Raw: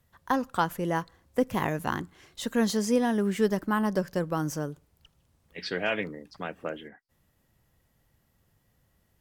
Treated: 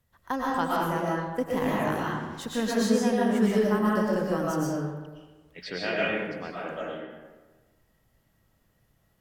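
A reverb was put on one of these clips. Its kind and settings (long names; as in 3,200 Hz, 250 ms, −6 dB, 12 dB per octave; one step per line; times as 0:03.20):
comb and all-pass reverb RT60 1.3 s, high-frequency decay 0.6×, pre-delay 80 ms, DRR −5.5 dB
level −4.5 dB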